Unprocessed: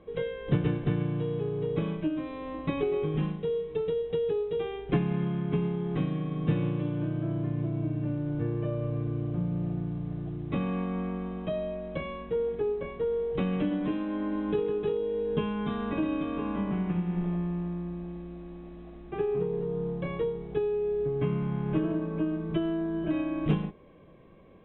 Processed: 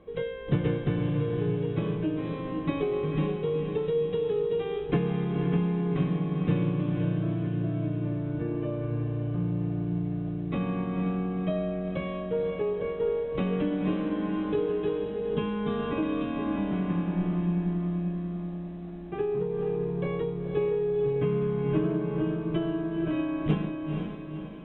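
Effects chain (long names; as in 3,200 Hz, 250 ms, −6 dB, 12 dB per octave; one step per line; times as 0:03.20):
feedback delay with all-pass diffusion 498 ms, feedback 49%, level −5 dB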